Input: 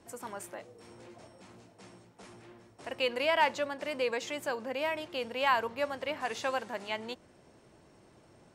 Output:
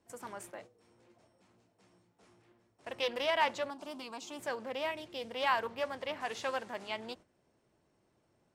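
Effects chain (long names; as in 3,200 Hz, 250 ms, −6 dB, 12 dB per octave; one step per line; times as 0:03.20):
noise gate −48 dBFS, range −11 dB
0:01.88–0:02.52: double-tracking delay 28 ms −5.5 dB
0:03.70–0:04.39: phaser with its sweep stopped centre 500 Hz, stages 6
0:04.91–0:05.31: parametric band 1,100 Hz −6.5 dB 1.9 octaves
highs frequency-modulated by the lows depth 0.16 ms
level −3 dB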